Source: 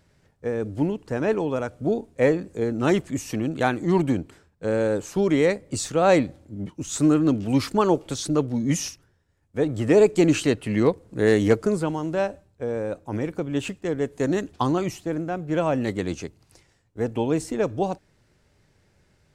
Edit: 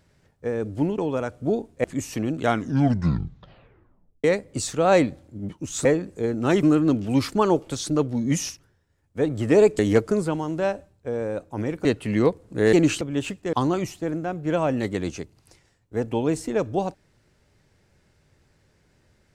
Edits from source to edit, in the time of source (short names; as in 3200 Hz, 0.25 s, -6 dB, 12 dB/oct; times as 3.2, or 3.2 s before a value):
0.98–1.37 cut
2.23–3.01 move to 7.02
3.53 tape stop 1.88 s
10.18–10.46 swap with 11.34–13.4
13.92–14.57 cut